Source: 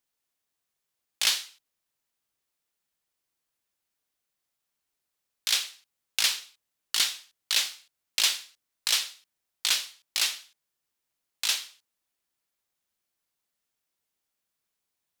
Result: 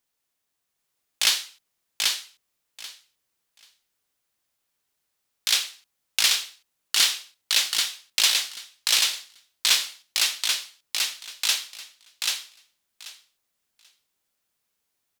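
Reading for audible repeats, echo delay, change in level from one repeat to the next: 3, 0.786 s, -16.0 dB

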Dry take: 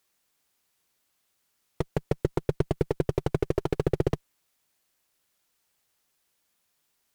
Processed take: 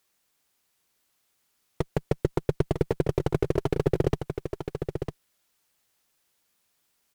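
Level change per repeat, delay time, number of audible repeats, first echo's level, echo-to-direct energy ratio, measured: no steady repeat, 0.952 s, 1, -7.5 dB, -7.5 dB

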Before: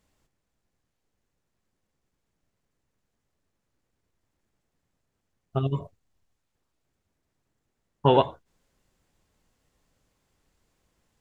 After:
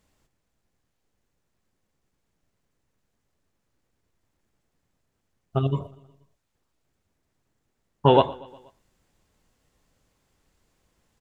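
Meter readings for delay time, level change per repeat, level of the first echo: 0.12 s, -5.0 dB, -22.0 dB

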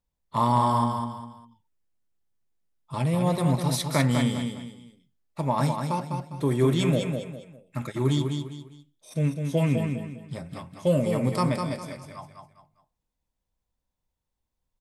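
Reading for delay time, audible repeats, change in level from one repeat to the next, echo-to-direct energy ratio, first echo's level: 0.202 s, 3, -9.5 dB, -5.0 dB, -5.5 dB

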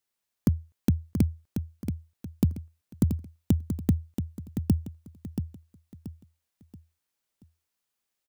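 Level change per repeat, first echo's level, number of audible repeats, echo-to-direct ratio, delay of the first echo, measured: -9.0 dB, -8.0 dB, 4, -7.5 dB, 0.68 s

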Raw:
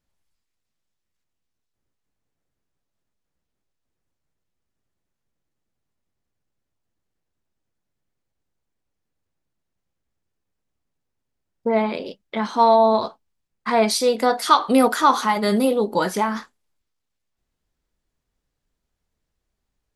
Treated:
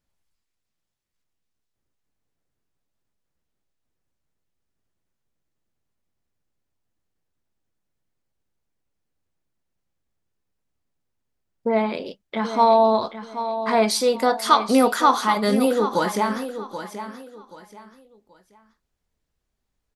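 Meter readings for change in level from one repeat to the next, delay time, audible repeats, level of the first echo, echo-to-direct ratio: -11.0 dB, 0.78 s, 3, -11.0 dB, -10.5 dB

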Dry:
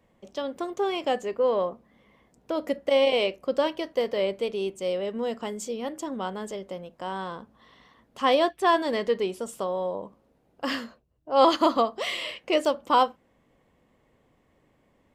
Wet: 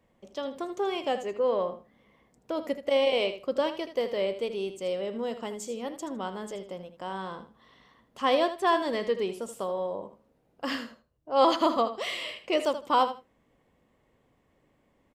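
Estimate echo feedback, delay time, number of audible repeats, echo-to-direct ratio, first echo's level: 18%, 79 ms, 2, -11.5 dB, -11.5 dB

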